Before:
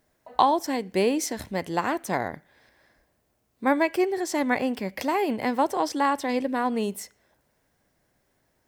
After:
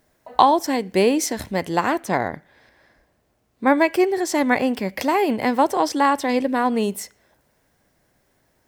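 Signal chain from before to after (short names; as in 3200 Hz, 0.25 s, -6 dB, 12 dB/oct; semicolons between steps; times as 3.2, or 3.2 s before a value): 2–3.78 high shelf 6700 Hz -7.5 dB; gain +5.5 dB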